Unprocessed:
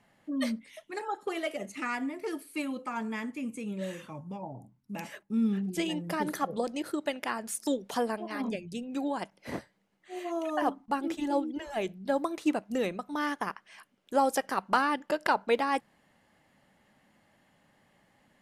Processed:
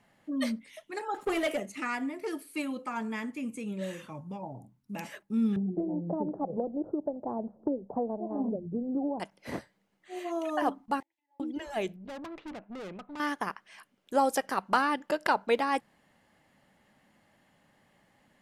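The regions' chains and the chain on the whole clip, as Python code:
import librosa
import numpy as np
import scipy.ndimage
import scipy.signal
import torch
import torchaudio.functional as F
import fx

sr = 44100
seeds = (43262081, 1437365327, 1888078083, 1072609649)

y = fx.chain(x, sr, fx.peak_eq(hz=4500.0, db=-8.0, octaves=0.61),
    fx.leveller(passes=2), at=(1.14, 1.6))
y = fx.chain(y, sr, fx.steep_lowpass(hz=800.0, slope=36),
    fx.band_squash(depth_pct=100), at=(5.56, 9.2))
y = fx.chain(y, sr, fx.crossing_spikes(level_db=-28.0),
    fx.double_bandpass(hz=1300.0, octaves=1.1),
    fx.gate_flip(shuts_db=-45.0, range_db=-36), at=(11.0, 11.4))
y = fx.chain(y, sr, fx.lowpass(hz=2700.0, slope=24),
    fx.tube_stage(drive_db=39.0, bias=0.45), at=(11.96, 13.2))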